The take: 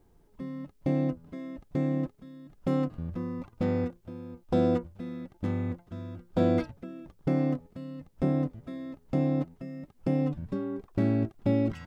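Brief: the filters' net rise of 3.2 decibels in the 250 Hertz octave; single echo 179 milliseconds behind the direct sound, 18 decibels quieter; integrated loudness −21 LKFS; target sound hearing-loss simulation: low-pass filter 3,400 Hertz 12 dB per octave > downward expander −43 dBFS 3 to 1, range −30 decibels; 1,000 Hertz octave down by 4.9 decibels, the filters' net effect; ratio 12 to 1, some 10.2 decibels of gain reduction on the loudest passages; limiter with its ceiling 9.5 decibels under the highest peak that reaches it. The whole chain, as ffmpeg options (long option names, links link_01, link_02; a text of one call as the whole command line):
ffmpeg -i in.wav -af "equalizer=frequency=250:width_type=o:gain=4,equalizer=frequency=1000:width_type=o:gain=-8,acompressor=threshold=-29dB:ratio=12,alimiter=level_in=4.5dB:limit=-24dB:level=0:latency=1,volume=-4.5dB,lowpass=3400,aecho=1:1:179:0.126,agate=range=-30dB:threshold=-43dB:ratio=3,volume=18dB" out.wav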